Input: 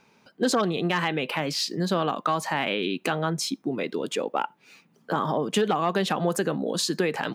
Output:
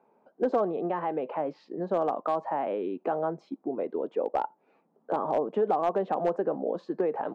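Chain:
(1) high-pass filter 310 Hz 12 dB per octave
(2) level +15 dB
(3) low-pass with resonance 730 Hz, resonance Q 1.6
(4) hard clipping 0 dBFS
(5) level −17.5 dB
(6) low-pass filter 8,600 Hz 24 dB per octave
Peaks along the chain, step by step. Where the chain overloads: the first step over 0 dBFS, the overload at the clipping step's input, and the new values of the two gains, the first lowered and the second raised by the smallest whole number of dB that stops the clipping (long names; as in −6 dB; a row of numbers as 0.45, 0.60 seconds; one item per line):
−11.0, +4.0, +4.0, 0.0, −17.5, −17.5 dBFS
step 2, 4.0 dB
step 2 +11 dB, step 5 −13.5 dB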